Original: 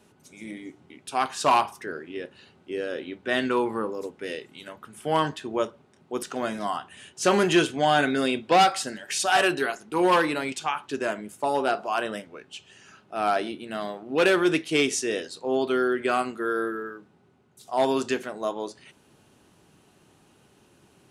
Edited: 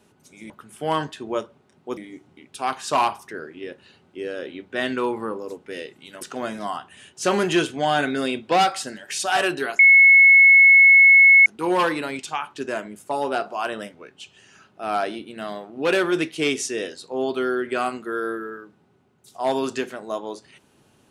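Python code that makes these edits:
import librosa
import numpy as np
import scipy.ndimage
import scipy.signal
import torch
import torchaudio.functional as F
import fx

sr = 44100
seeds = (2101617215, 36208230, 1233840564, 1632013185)

y = fx.edit(x, sr, fx.move(start_s=4.74, length_s=1.47, to_s=0.5),
    fx.insert_tone(at_s=9.79, length_s=1.67, hz=2190.0, db=-8.0), tone=tone)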